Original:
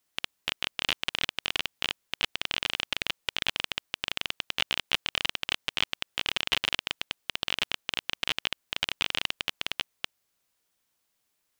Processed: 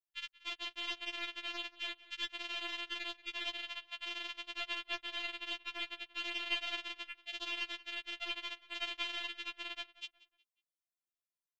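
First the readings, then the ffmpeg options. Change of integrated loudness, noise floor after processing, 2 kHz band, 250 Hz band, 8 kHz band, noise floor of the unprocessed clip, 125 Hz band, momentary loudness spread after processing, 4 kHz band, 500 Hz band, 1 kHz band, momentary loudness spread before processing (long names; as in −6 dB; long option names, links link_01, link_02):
−9.5 dB, below −85 dBFS, −8.5 dB, −8.0 dB, −15.0 dB, −77 dBFS, below −25 dB, 5 LU, −10.0 dB, −8.5 dB, −8.5 dB, 5 LU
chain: -filter_complex "[0:a]afwtdn=0.0112,adynamicequalizer=threshold=0.00398:dfrequency=7000:dqfactor=0.72:tfrequency=7000:tqfactor=0.72:attack=5:release=100:ratio=0.375:range=2.5:mode=cutabove:tftype=bell,asplit=2[link_01][link_02];[link_02]adelay=182,lowpass=frequency=3900:poles=1,volume=-18dB,asplit=2[link_03][link_04];[link_04]adelay=182,lowpass=frequency=3900:poles=1,volume=0.37,asplit=2[link_05][link_06];[link_06]adelay=182,lowpass=frequency=3900:poles=1,volume=0.37[link_07];[link_03][link_05][link_07]amix=inputs=3:normalize=0[link_08];[link_01][link_08]amix=inputs=2:normalize=0,afftfilt=real='re*4*eq(mod(b,16),0)':imag='im*4*eq(mod(b,16),0)':win_size=2048:overlap=0.75,volume=-6dB"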